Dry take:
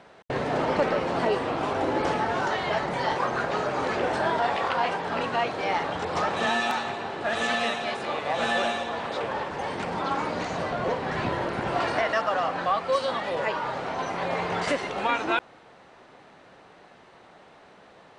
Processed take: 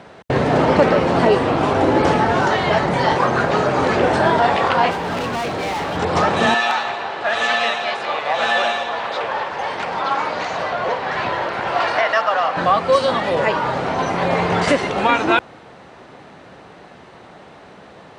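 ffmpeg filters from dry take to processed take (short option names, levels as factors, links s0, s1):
-filter_complex "[0:a]asettb=1/sr,asplit=3[s0][s1][s2];[s0]atrim=end=4.914[s3];[s1]atrim=start=4.91:end=5.97,asetpts=PTS-STARTPTS,afade=t=in:d=0.004:c=qsin,afade=t=out:st=1.056:d=0.004:c=qsin,asoftclip=type=hard:threshold=0.0299[s4];[s2]atrim=start=5.966[s5];[s3][s4]acrossfade=d=0.004:c1=hsin:c2=qsin[s6];[s6][s5]acrossfade=d=0.004:c1=qsin:c2=hsin,asettb=1/sr,asplit=3[s7][s8][s9];[s7]atrim=end=6.544[s10];[s8]atrim=start=6.54:end=12.57,asetpts=PTS-STARTPTS,afade=t=in:d=0.004:c=qsin,afade=t=out:st=6.026:d=0.004:c=qsin,acrossover=split=530 6500:gain=0.158 1 0.224[s11][s12][s13];[s11][s12][s13]amix=inputs=3:normalize=0[s14];[s9]atrim=start=12.566[s15];[s10][s14]acrossfade=d=0.004:c1=hsin:c2=qsin[s16];[s16][s15]acrossfade=d=0.004:c1=qsin:c2=hsin,highpass=54,lowshelf=f=270:g=7,volume=2.66"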